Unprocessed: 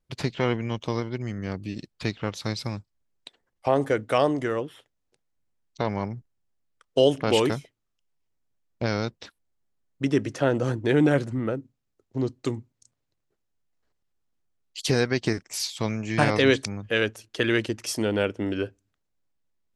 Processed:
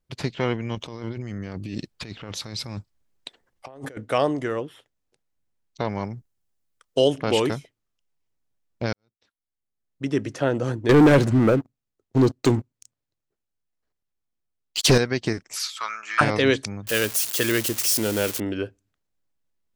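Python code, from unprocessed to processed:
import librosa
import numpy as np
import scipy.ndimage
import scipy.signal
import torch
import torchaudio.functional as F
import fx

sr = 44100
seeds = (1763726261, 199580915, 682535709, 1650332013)

y = fx.over_compress(x, sr, threshold_db=-35.0, ratio=-1.0, at=(0.75, 3.97))
y = fx.high_shelf(y, sr, hz=5700.0, db=8.0, at=(5.96, 7.08))
y = fx.leveller(y, sr, passes=3, at=(10.89, 14.98))
y = fx.highpass_res(y, sr, hz=1300.0, q=10.0, at=(15.56, 16.21))
y = fx.crossing_spikes(y, sr, level_db=-16.5, at=(16.87, 18.4))
y = fx.edit(y, sr, fx.fade_in_span(start_s=8.93, length_s=1.3, curve='qua'), tone=tone)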